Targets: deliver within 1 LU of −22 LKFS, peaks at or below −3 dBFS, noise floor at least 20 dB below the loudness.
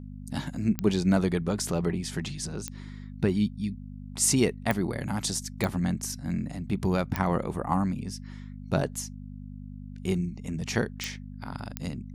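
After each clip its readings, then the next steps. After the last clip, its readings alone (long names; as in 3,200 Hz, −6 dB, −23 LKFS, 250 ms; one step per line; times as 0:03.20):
number of clicks 7; mains hum 50 Hz; hum harmonics up to 250 Hz; level of the hum −39 dBFS; integrated loudness −29.0 LKFS; sample peak −10.5 dBFS; target loudness −22.0 LKFS
→ click removal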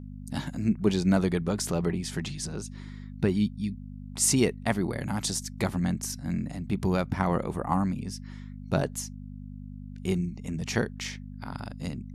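number of clicks 0; mains hum 50 Hz; hum harmonics up to 250 Hz; level of the hum −39 dBFS
→ hum removal 50 Hz, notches 5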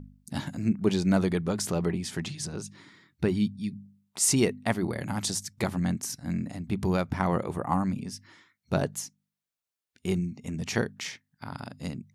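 mains hum none found; integrated loudness −29.5 LKFS; sample peak −11.0 dBFS; target loudness −22.0 LKFS
→ level +7.5 dB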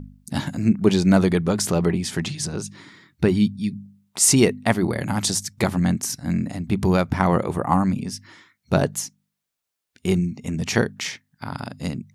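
integrated loudness −22.0 LKFS; sample peak −3.5 dBFS; background noise floor −81 dBFS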